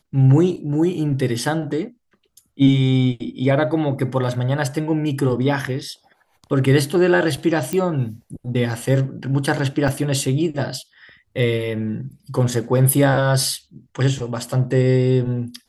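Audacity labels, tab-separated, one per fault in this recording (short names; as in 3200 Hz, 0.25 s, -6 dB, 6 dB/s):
7.730000	7.730000	pop -10 dBFS
9.880000	9.880000	gap 2.2 ms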